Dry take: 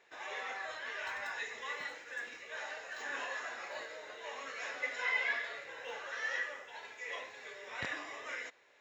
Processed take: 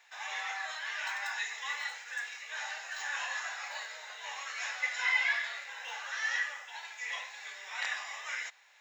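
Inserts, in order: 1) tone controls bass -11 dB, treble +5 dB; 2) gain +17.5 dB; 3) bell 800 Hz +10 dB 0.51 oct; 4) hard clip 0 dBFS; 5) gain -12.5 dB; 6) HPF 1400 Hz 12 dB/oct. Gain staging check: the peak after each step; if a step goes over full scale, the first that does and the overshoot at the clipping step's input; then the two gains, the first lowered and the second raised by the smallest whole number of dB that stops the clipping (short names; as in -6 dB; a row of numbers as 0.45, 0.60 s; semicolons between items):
-22.0, -4.5, -3.5, -3.5, -16.0, -17.5 dBFS; no overload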